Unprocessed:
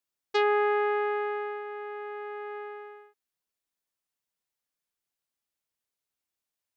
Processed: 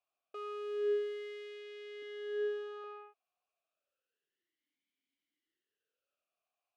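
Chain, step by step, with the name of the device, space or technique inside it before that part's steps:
0:02.02–0:02.84: spectral tilt +1.5 dB per octave
talk box (tube saturation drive 44 dB, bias 0.35; formant filter swept between two vowels a-i 0.3 Hz)
level +15.5 dB

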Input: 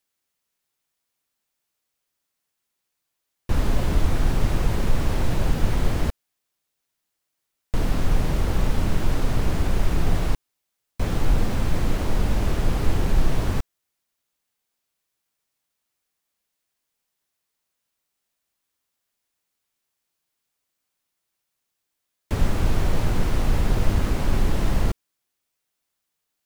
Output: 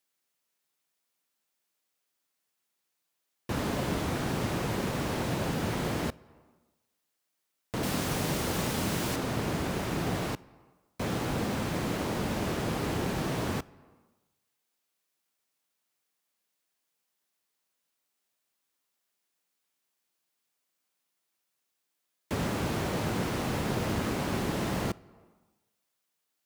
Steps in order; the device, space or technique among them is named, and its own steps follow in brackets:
high-pass filter 150 Hz 12 dB per octave
compressed reverb return (on a send at −12 dB: convolution reverb RT60 1.1 s, pre-delay 21 ms + downward compressor 6 to 1, threshold −37 dBFS, peak gain reduction 11.5 dB)
0:07.83–0:09.16: on the sum: high-shelf EQ 3,800 Hz +9 dB
level −1.5 dB

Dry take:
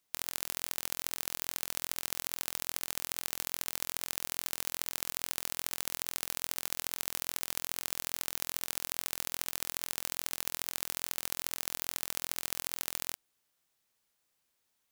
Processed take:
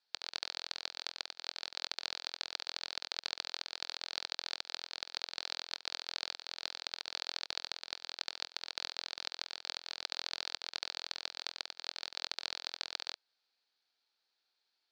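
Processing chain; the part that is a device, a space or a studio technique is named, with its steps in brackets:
voice changer toy (ring modulator whose carrier an LFO sweeps 790 Hz, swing 60%, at 2.5 Hz; loudspeaker in its box 550–4,500 Hz, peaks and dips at 590 Hz −6 dB, 1,100 Hz −10 dB, 2,000 Hz −7 dB, 2,900 Hz −5 dB, 4,400 Hz +9 dB)
level +5 dB

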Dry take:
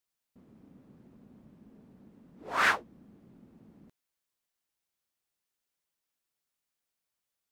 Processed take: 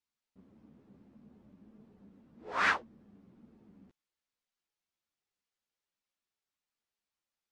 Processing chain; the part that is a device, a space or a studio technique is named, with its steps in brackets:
string-machine ensemble chorus (string-ensemble chorus; low-pass filter 6,100 Hz 12 dB per octave)

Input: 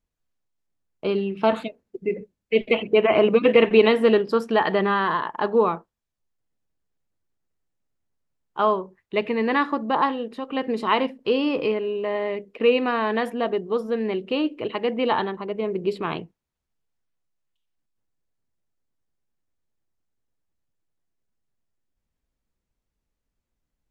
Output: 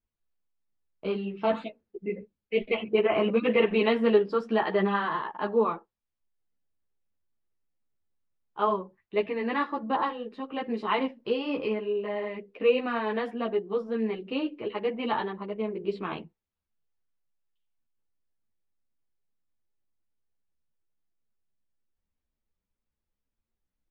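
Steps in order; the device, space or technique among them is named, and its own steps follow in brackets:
string-machine ensemble chorus (string-ensemble chorus; low-pass filter 4,400 Hz 12 dB per octave)
level −3 dB

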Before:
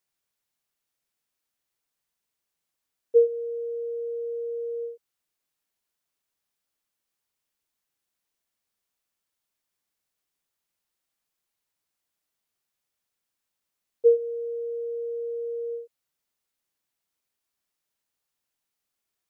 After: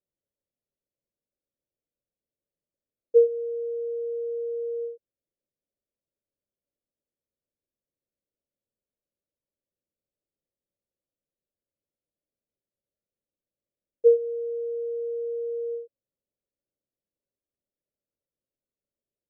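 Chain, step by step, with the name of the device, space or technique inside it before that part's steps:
under water (low-pass filter 490 Hz 24 dB per octave; parametric band 570 Hz +11 dB 0.35 octaves)

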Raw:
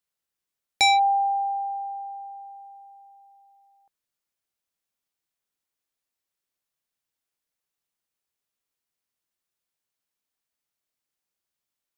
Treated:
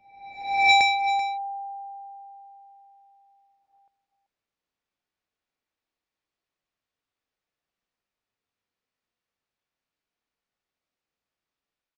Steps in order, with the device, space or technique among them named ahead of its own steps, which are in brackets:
high-frequency loss of the air 140 metres
reverse reverb (reversed playback; convolution reverb RT60 1.1 s, pre-delay 88 ms, DRR −2.5 dB; reversed playback)
single-tap delay 385 ms −13.5 dB

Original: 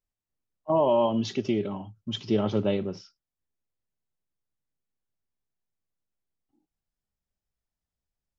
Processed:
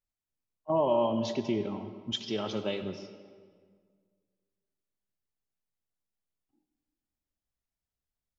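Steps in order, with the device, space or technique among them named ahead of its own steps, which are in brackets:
0:02.12–0:02.83: spectral tilt +3 dB per octave
filtered reverb send (on a send: high-pass filter 150 Hz + low-pass filter 5,700 Hz + convolution reverb RT60 1.8 s, pre-delay 83 ms, DRR 9.5 dB)
on the sum: level −4 dB

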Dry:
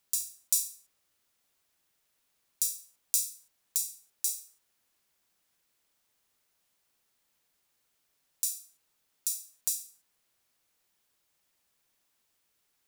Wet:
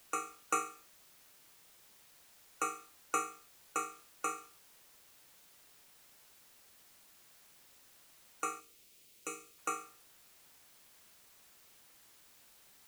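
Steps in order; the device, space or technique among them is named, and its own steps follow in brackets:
split-band scrambled radio (band-splitting scrambler in four parts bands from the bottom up 4321; band-pass filter 330–2,900 Hz; white noise bed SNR 17 dB)
0:08.60–0:09.58: flat-topped bell 1,100 Hz −10 dB
level +6 dB

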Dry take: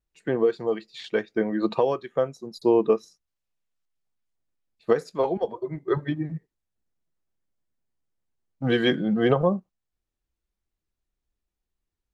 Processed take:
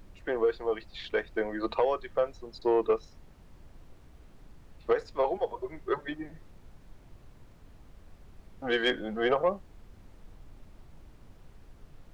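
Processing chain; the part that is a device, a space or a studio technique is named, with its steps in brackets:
aircraft cabin announcement (band-pass filter 490–4,000 Hz; soft clipping −15 dBFS, distortion −20 dB; brown noise bed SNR 16 dB)

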